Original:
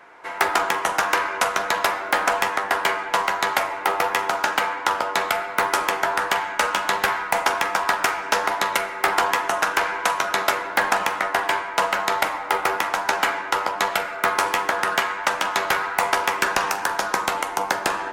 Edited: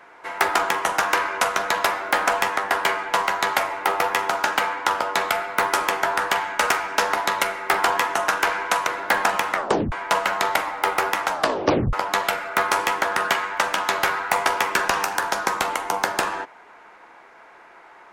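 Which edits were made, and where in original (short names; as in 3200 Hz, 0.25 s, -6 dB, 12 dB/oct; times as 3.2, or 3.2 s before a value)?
6.7–8.04 cut
10.21–10.54 cut
11.23 tape stop 0.36 s
12.96 tape stop 0.64 s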